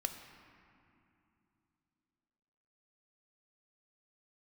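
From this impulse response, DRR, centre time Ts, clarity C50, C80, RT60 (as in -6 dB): 6.0 dB, 37 ms, 7.5 dB, 8.5 dB, 2.8 s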